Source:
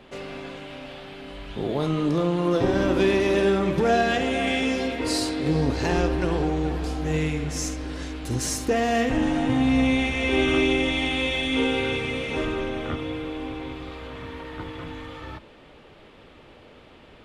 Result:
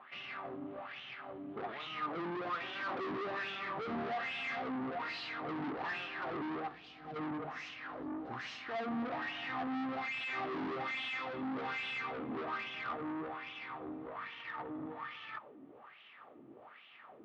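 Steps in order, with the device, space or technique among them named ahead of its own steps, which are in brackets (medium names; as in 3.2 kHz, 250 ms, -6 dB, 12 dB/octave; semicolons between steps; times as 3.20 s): wah-wah guitar rig (wah-wah 1.2 Hz 280–3000 Hz, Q 4.2; valve stage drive 43 dB, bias 0.5; cabinet simulation 100–4300 Hz, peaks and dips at 130 Hz +8 dB, 230 Hz +5 dB, 500 Hz -4 dB, 740 Hz +5 dB, 1.2 kHz +8 dB, 1.9 kHz +4 dB); 6.68–7.16 s: peaking EQ 1.5 kHz -11.5 dB 2.4 oct; trim +4 dB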